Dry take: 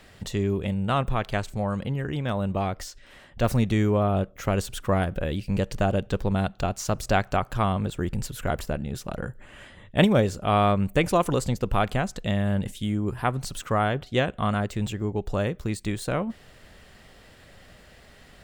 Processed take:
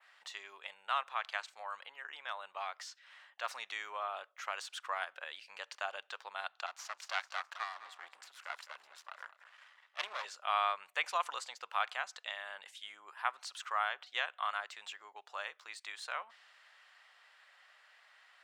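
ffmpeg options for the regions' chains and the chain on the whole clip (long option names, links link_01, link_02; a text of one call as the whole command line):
ffmpeg -i in.wav -filter_complex "[0:a]asettb=1/sr,asplit=3[link_01][link_02][link_03];[link_01]atrim=end=6.664[link_04];[link_02]atrim=start=6.66:end=10.25,asetpts=PTS-STARTPTS,afade=type=in:duration=0.004:curve=qsin,afade=type=out:start_time=3.586:duration=0.004:curve=qsin,bandreject=frequency=81.17:width_type=h:width=4,bandreject=frequency=162.34:width_type=h:width=4,bandreject=frequency=243.51:width_type=h:width=4,aeval=exprs='max(val(0),0)':channel_layout=same,aecho=1:1:210|420|630:0.2|0.0559|0.0156,atrim=end_sample=158319[link_05];[link_03]atrim=start=10.246[link_06];[link_04][link_05]acrossfade=duration=0.004:curve1=hsin:curve2=qsin[link_07];[link_07][link_06]acrossfade=duration=0.004:curve1=qsin:curve2=hsin,adynamicequalizer=threshold=0.00562:dfrequency=5000:dqfactor=0.71:tfrequency=5000:tqfactor=0.71:attack=5:release=100:ratio=0.375:range=3:mode=boostabove:tftype=bell,highpass=frequency=960:width=0.5412,highpass=frequency=960:width=1.3066,aemphasis=mode=reproduction:type=75fm,volume=-5dB" out.wav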